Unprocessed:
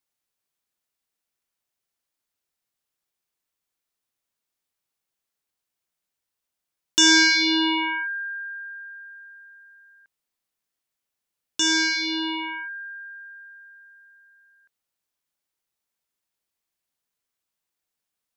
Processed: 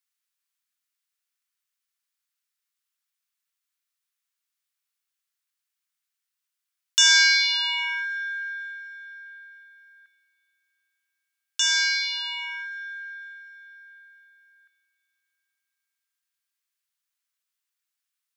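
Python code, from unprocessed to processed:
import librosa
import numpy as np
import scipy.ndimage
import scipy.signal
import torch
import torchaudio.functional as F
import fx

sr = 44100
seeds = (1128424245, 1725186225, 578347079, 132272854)

y = scipy.signal.sosfilt(scipy.signal.butter(4, 1200.0, 'highpass', fs=sr, output='sos'), x)
y = fx.rev_freeverb(y, sr, rt60_s=4.7, hf_ratio=0.85, predelay_ms=75, drr_db=19.5)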